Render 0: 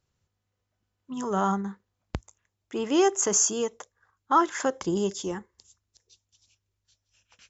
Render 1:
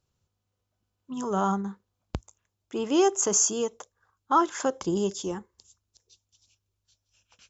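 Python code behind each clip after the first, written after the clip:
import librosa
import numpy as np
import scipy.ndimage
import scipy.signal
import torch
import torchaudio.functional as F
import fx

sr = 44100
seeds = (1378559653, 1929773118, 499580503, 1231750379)

y = fx.peak_eq(x, sr, hz=1900.0, db=-7.5, octaves=0.49)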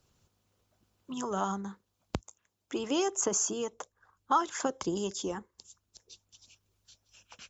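y = fx.hpss(x, sr, part='harmonic', gain_db=-8)
y = fx.band_squash(y, sr, depth_pct=40)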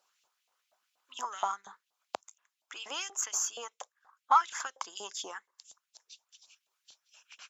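y = fx.cheby_harmonics(x, sr, harmonics=(6,), levels_db=(-32,), full_scale_db=-13.5)
y = fx.filter_lfo_highpass(y, sr, shape='saw_up', hz=4.2, low_hz=680.0, high_hz=3100.0, q=2.2)
y = y * 10.0 ** (-2.0 / 20.0)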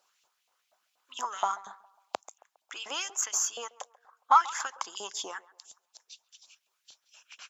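y = fx.echo_banded(x, sr, ms=136, feedback_pct=46, hz=750.0, wet_db=-18.5)
y = y * 10.0 ** (3.0 / 20.0)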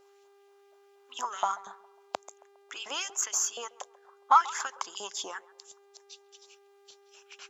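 y = fx.dmg_buzz(x, sr, base_hz=400.0, harmonics=30, level_db=-61.0, tilt_db=-9, odd_only=False)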